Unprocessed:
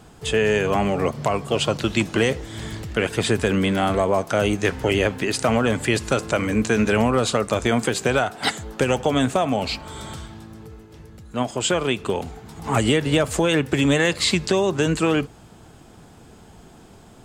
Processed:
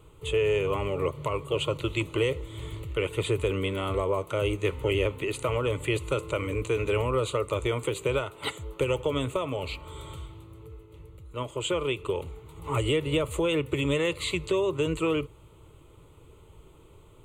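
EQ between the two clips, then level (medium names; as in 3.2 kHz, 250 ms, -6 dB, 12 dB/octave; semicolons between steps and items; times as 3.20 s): bass shelf 320 Hz +5.5 dB; static phaser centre 1.1 kHz, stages 8; -6.0 dB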